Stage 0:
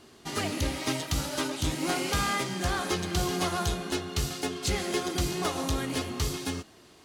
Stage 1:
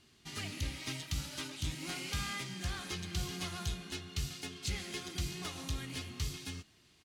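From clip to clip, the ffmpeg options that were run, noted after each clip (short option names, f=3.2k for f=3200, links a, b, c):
-af "firequalizer=gain_entry='entry(130,0);entry(260,-7);entry(500,-13);entry(2300,0);entry(10000,-4)':delay=0.05:min_phase=1,volume=-6.5dB"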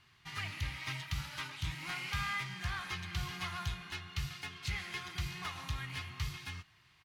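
-af "equalizer=f=125:t=o:w=1:g=7,equalizer=f=250:t=o:w=1:g=-10,equalizer=f=500:t=o:w=1:g=-7,equalizer=f=1k:t=o:w=1:g=9,equalizer=f=2k:t=o:w=1:g=7,equalizer=f=8k:t=o:w=1:g=-7,volume=-2.5dB"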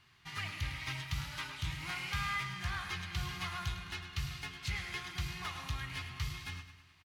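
-af "aecho=1:1:105|210|315|420|525:0.282|0.141|0.0705|0.0352|0.0176"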